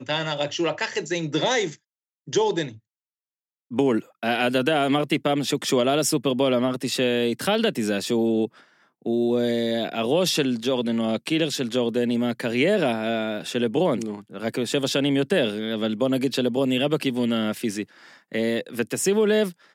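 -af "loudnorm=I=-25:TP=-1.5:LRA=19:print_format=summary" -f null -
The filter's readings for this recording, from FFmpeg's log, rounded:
Input Integrated:    -23.8 LUFS
Input True Peak:      -8.0 dBTP
Input LRA:             2.3 LU
Input Threshold:     -34.0 LUFS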